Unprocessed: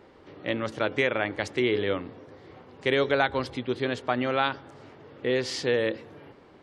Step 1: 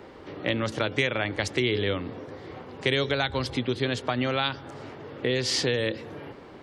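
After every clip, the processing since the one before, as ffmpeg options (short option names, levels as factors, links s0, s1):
-filter_complex "[0:a]acrossover=split=160|3000[s0][s1][s2];[s1]acompressor=threshold=0.0224:ratio=6[s3];[s0][s3][s2]amix=inputs=3:normalize=0,volume=2.37"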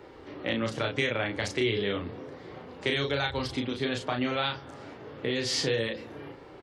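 -filter_complex "[0:a]flanger=delay=2.2:depth=8.3:regen=-58:speed=0.31:shape=sinusoidal,asplit=2[s0][s1];[s1]adelay=35,volume=0.631[s2];[s0][s2]amix=inputs=2:normalize=0"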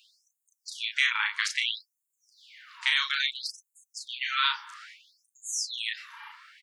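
-af "afftfilt=real='re*gte(b*sr/1024,830*pow(6600/830,0.5+0.5*sin(2*PI*0.6*pts/sr)))':imag='im*gte(b*sr/1024,830*pow(6600/830,0.5+0.5*sin(2*PI*0.6*pts/sr)))':win_size=1024:overlap=0.75,volume=2"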